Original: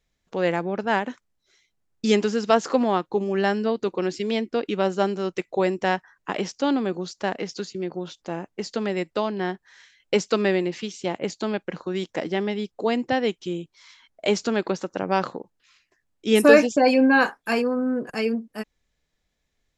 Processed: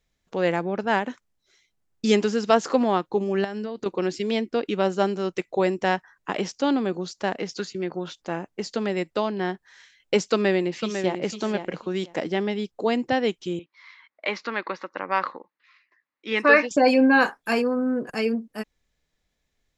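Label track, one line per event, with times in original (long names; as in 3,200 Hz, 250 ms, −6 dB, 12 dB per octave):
3.440000	3.860000	downward compressor 16 to 1, threshold −26 dBFS
7.520000	8.380000	dynamic equaliser 1,600 Hz, up to +6 dB, over −49 dBFS, Q 0.89
10.320000	11.240000	delay throw 500 ms, feedback 15%, level −7.5 dB
13.590000	16.710000	loudspeaker in its box 410–4,100 Hz, peaks and dips at 410 Hz −8 dB, 690 Hz −9 dB, 1,100 Hz +7 dB, 2,000 Hz +8 dB, 3,200 Hz −6 dB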